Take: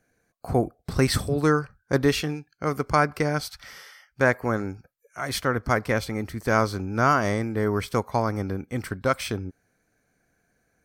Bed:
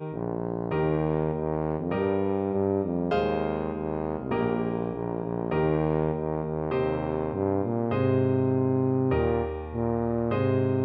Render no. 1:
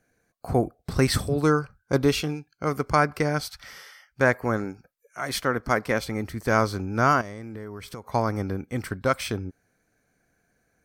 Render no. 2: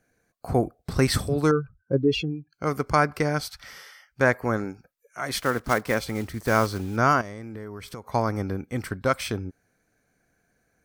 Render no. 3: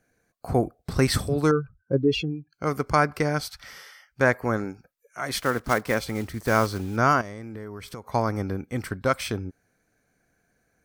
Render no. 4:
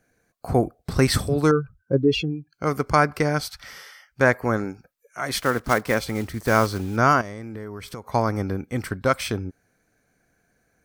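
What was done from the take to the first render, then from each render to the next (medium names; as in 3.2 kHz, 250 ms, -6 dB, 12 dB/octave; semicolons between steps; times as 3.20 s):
1.42–2.67 s: band-stop 1.8 kHz, Q 5.7; 4.64–6.05 s: peaking EQ 87 Hz -11.5 dB; 7.21–8.07 s: compression, threshold -34 dBFS
1.51–2.53 s: spectral contrast enhancement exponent 2.1; 5.41–6.98 s: block-companded coder 5-bit
no audible change
trim +2.5 dB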